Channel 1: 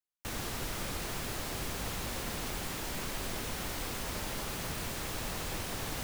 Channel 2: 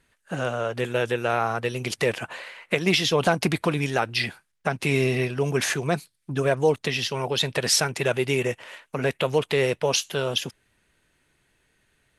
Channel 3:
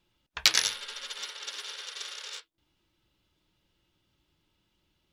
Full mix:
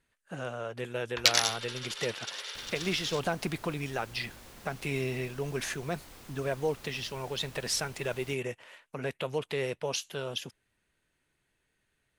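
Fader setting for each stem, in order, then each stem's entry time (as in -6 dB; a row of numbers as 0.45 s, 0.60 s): -13.5 dB, -10.0 dB, -1.0 dB; 2.30 s, 0.00 s, 0.80 s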